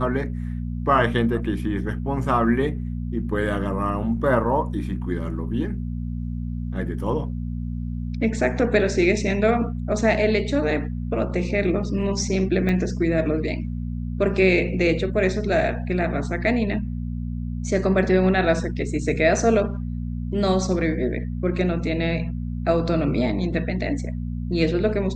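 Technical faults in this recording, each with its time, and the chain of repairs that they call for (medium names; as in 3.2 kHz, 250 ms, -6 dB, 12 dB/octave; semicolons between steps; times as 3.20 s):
hum 60 Hz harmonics 4 -28 dBFS
12.69 s: dropout 3.3 ms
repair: de-hum 60 Hz, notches 4; interpolate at 12.69 s, 3.3 ms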